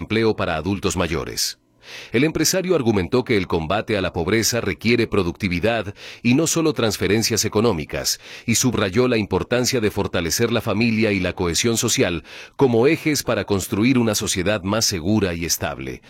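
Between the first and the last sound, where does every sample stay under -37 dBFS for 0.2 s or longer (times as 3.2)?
1.53–1.85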